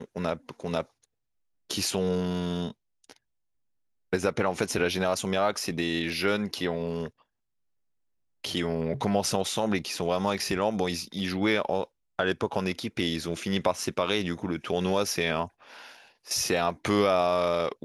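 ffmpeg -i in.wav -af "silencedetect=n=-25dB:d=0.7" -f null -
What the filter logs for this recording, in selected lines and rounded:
silence_start: 0.81
silence_end: 1.71 | silence_duration: 0.90
silence_start: 2.67
silence_end: 4.13 | silence_duration: 1.46
silence_start: 7.06
silence_end: 8.44 | silence_duration: 1.38
silence_start: 15.44
silence_end: 16.31 | silence_duration: 0.87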